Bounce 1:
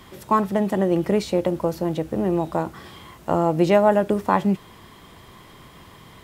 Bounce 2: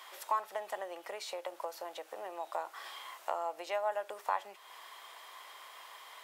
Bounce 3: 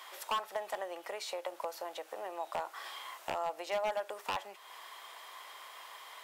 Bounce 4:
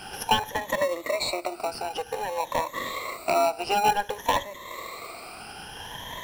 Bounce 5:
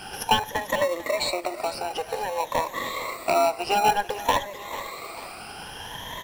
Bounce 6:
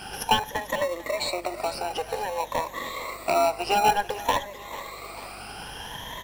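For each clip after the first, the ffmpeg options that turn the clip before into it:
-af "acompressor=threshold=-28dB:ratio=3,highpass=f=650:w=0.5412,highpass=f=650:w=1.3066,volume=-2dB"
-af "aeval=exprs='0.0422*(abs(mod(val(0)/0.0422+3,4)-2)-1)':c=same,volume=1.5dB"
-filter_complex "[0:a]afftfilt=real='re*pow(10,23/40*sin(2*PI*(1.1*log(max(b,1)*sr/1024/100)/log(2)-(0.54)*(pts-256)/sr)))':imag='im*pow(10,23/40*sin(2*PI*(1.1*log(max(b,1)*sr/1024/100)/log(2)-(0.54)*(pts-256)/sr)))':win_size=1024:overlap=0.75,asplit=2[a][b];[b]acrusher=samples=27:mix=1:aa=0.000001,volume=-5.5dB[c];[a][c]amix=inputs=2:normalize=0,volume=5dB"
-af "aecho=1:1:443|886|1329|1772:0.178|0.08|0.036|0.0162,volume=1.5dB"
-af "aeval=exprs='val(0)+0.00316*(sin(2*PI*50*n/s)+sin(2*PI*2*50*n/s)/2+sin(2*PI*3*50*n/s)/3+sin(2*PI*4*50*n/s)/4+sin(2*PI*5*50*n/s)/5)':c=same,tremolo=f=0.53:d=0.3"

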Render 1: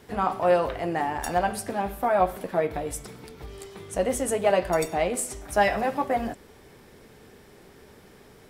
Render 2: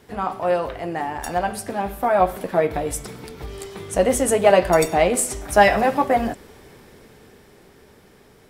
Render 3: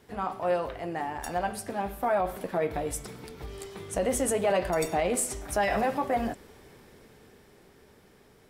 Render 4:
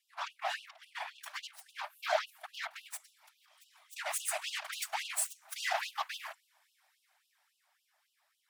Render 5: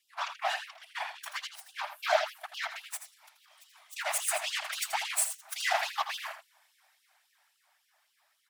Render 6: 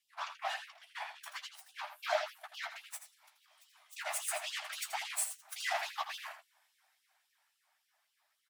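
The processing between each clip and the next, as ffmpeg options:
-af "dynaudnorm=f=200:g=21:m=11.5dB"
-af "alimiter=limit=-11dB:level=0:latency=1:release=31,volume=-6.5dB"
-af "aeval=exprs='0.141*(cos(1*acos(clip(val(0)/0.141,-1,1)))-cos(1*PI/2))+0.0282*(cos(7*acos(clip(val(0)/0.141,-1,1)))-cos(7*PI/2))':c=same,afftfilt=real='hypot(re,im)*cos(2*PI*random(0))':imag='hypot(re,im)*sin(2*PI*random(1))':win_size=512:overlap=0.75,afftfilt=real='re*gte(b*sr/1024,560*pow(2700/560,0.5+0.5*sin(2*PI*3.6*pts/sr)))':imag='im*gte(b*sr/1024,560*pow(2700/560,0.5+0.5*sin(2*PI*3.6*pts/sr)))':win_size=1024:overlap=0.75,volume=2.5dB"
-af "aecho=1:1:82:0.316,volume=4.5dB"
-filter_complex "[0:a]asplit=2[a][b];[b]adelay=13,volume=-7.5dB[c];[a][c]amix=inputs=2:normalize=0,volume=-7dB"

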